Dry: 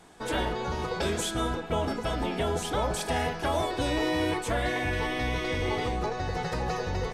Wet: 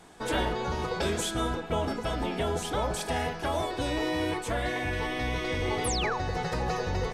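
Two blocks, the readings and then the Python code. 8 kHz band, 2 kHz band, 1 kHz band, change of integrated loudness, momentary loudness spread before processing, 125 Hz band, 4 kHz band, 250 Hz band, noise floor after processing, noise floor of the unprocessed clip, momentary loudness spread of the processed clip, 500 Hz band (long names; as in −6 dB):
+1.0 dB, −0.5 dB, −0.5 dB, −0.5 dB, 3 LU, −0.5 dB, 0.0 dB, −1.0 dB, −39 dBFS, −38 dBFS, 3 LU, −1.0 dB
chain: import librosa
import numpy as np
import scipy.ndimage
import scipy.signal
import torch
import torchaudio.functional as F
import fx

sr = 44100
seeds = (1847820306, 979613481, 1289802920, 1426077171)

y = fx.rider(x, sr, range_db=10, speed_s=2.0)
y = fx.spec_paint(y, sr, seeds[0], shape='fall', start_s=5.84, length_s=0.34, low_hz=800.0, high_hz=12000.0, level_db=-32.0)
y = F.gain(torch.from_numpy(y), -1.0).numpy()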